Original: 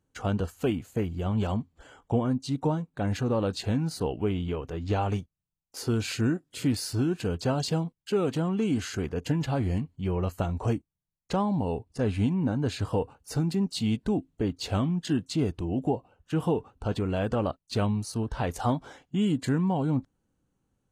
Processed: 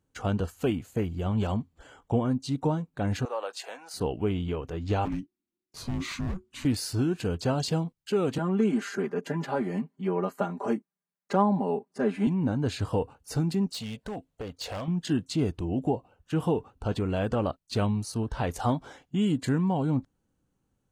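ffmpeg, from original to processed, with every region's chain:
-filter_complex "[0:a]asettb=1/sr,asplit=3[s0][s1][s2];[s0]atrim=end=3.254[s3];[s1]atrim=start=3.25:end=3.94,asetpts=PTS-STARTPTS,afade=t=in:d=0.004:c=qsin,afade=t=out:st=0.686:d=0.004:c=qsin,highpass=f=580:w=0.5412,highpass=f=580:w=1.3066,equalizer=f=4000:t=o:w=0.58:g=-5.5[s4];[s2]atrim=start=3.936[s5];[s3][s4]acrossfade=d=0.004:c1=hsin:c2=qsin[s6];[s6][s5]acrossfade=d=0.004:c1=qsin:c2=hsin,asettb=1/sr,asplit=3[s7][s8][s9];[s7]atrim=end=5.054[s10];[s8]atrim=start=5.05:end=6.65,asetpts=PTS-STARTPTS,afade=t=in:d=0.004:c=qsin,afade=t=out:st=1.596:d=0.004:c=qsin,highshelf=f=5700:g=-8.5,volume=26.6,asoftclip=hard,volume=0.0376,afreqshift=-370[s11];[s9]atrim=start=6.646[s12];[s10][s11]acrossfade=d=0.004:c1=hsin:c2=qsin[s13];[s13][s12]acrossfade=d=0.004:c1=qsin:c2=hsin,asettb=1/sr,asplit=3[s14][s15][s16];[s14]atrim=end=8.384[s17];[s15]atrim=start=8.38:end=12.27,asetpts=PTS-STARTPTS,afade=t=in:d=0.004:c=qsin,afade=t=out:st=3.886:d=0.004:c=qsin,highpass=f=200:w=0.5412,highpass=f=200:w=1.3066,highshelf=f=2300:t=q:w=1.5:g=-6.5,aecho=1:1:5:0.86,atrim=end_sample=171549[s18];[s16]atrim=start=12.266[s19];[s17][s18]acrossfade=d=0.004:c1=hsin:c2=qsin[s20];[s20][s19]acrossfade=d=0.004:c1=qsin:c2=hsin,asettb=1/sr,asplit=3[s21][s22][s23];[s21]atrim=end=13.724[s24];[s22]atrim=start=13.72:end=14.88,asetpts=PTS-STARTPTS,afade=t=in:d=0.004:c=qsin,afade=t=out:st=1.156:d=0.004:c=qsin,lowshelf=f=420:t=q:w=3:g=-6.5,acompressor=threshold=0.0282:ratio=2.5:attack=3.2:release=140:knee=1:detection=peak,aeval=exprs='0.0355*(abs(mod(val(0)/0.0355+3,4)-2)-1)':c=same[s25];[s23]atrim=start=14.876[s26];[s24][s25]acrossfade=d=0.004:c1=hsin:c2=qsin[s27];[s27][s26]acrossfade=d=0.004:c1=qsin:c2=hsin"

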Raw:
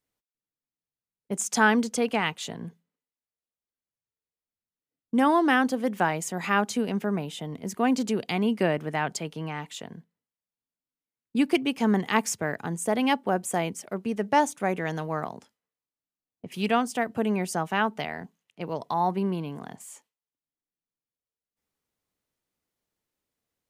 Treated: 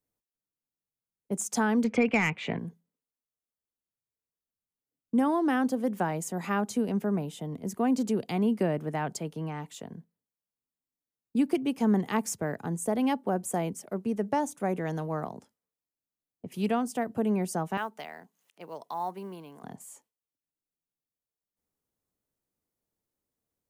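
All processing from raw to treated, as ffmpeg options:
-filter_complex "[0:a]asettb=1/sr,asplit=3[s0][s1][s2];[s0]atrim=end=1.844[s3];[s1]atrim=start=1.84:end=2.59,asetpts=PTS-STARTPTS,afade=t=in:d=0.004:c=qsin,afade=t=out:st=0.746:d=0.004:c=qsin,lowpass=f=2300:t=q:w=9,acontrast=75[s4];[s2]atrim=start=2.586[s5];[s3][s4]acrossfade=d=0.004:c1=hsin:c2=qsin[s6];[s6][s5]acrossfade=d=0.004:c1=qsin:c2=hsin,asettb=1/sr,asplit=3[s7][s8][s9];[s7]atrim=end=17.774[s10];[s8]atrim=start=17.77:end=19.64,asetpts=PTS-STARTPTS,afade=t=in:d=0.004:c=qsin,afade=t=out:st=1.866:d=0.004:c=qsin,acompressor=mode=upward:threshold=0.00447:ratio=2.5:attack=3.2:release=140:knee=2.83:detection=peak,highpass=f=1100:p=1,acrusher=bits=8:mode=log:mix=0:aa=0.000001[s11];[s9]atrim=start=19.636[s12];[s10][s11]acrossfade=d=0.004:c1=hsin:c2=qsin[s13];[s13][s12]acrossfade=d=0.004:c1=qsin:c2=hsin,equalizer=f=2700:t=o:w=2.6:g=-9.5,acrossover=split=220[s14][s15];[s15]acompressor=threshold=0.0631:ratio=4[s16];[s14][s16]amix=inputs=2:normalize=0"

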